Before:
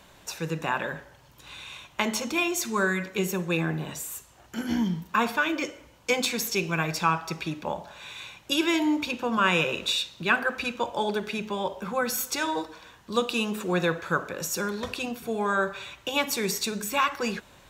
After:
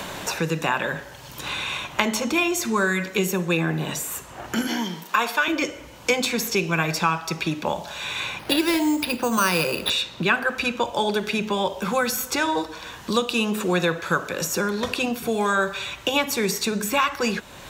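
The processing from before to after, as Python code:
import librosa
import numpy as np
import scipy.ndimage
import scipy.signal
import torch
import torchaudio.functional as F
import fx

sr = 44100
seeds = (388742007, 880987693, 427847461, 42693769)

y = fx.highpass(x, sr, hz=430.0, slope=12, at=(4.67, 5.48))
y = fx.resample_bad(y, sr, factor=6, down='none', up='hold', at=(8.39, 9.9))
y = fx.band_squash(y, sr, depth_pct=70)
y = y * librosa.db_to_amplitude(4.0)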